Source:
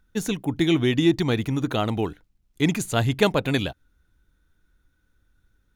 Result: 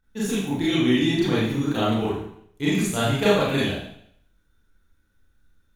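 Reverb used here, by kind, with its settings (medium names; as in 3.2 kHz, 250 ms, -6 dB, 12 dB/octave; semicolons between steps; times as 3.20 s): Schroeder reverb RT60 0.67 s, combs from 28 ms, DRR -9.5 dB; trim -8.5 dB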